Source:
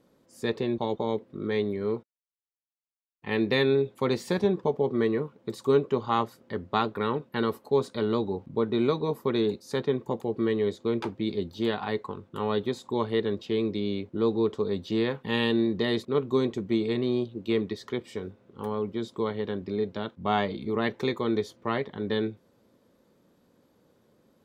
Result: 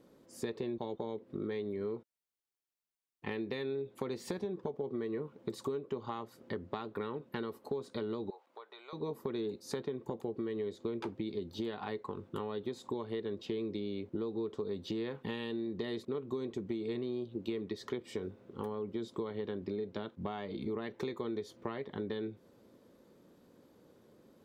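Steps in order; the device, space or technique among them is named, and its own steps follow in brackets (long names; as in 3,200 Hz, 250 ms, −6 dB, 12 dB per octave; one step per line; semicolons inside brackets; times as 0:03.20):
serial compression, leveller first (downward compressor 2.5 to 1, threshold −28 dBFS, peak gain reduction 8 dB; downward compressor 6 to 1, threshold −37 dBFS, peak gain reduction 12.5 dB)
0:08.30–0:08.93: high-pass filter 700 Hz 24 dB per octave
parametric band 360 Hz +4 dB 1 octave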